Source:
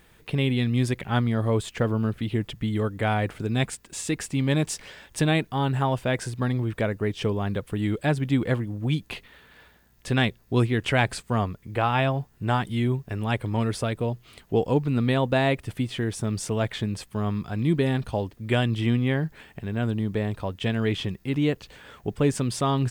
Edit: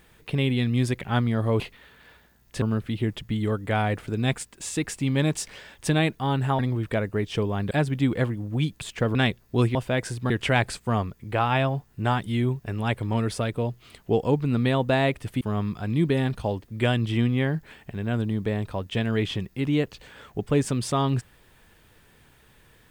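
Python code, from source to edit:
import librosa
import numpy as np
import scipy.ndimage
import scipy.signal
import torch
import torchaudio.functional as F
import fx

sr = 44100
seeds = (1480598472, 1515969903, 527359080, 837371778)

y = fx.edit(x, sr, fx.swap(start_s=1.6, length_s=0.34, other_s=9.11, other_length_s=1.02),
    fx.move(start_s=5.91, length_s=0.55, to_s=10.73),
    fx.cut(start_s=7.58, length_s=0.43),
    fx.cut(start_s=15.84, length_s=1.26), tone=tone)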